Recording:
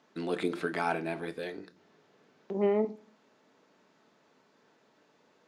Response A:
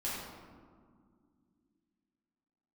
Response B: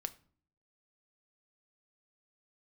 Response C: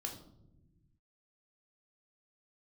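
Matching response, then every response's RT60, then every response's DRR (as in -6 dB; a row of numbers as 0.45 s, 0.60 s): B; 2.1 s, 0.50 s, no single decay rate; -8.5 dB, 9.5 dB, 1.5 dB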